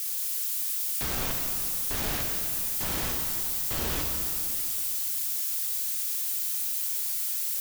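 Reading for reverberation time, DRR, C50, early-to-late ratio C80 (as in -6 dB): 2.7 s, 1.0 dB, 2.5 dB, 3.5 dB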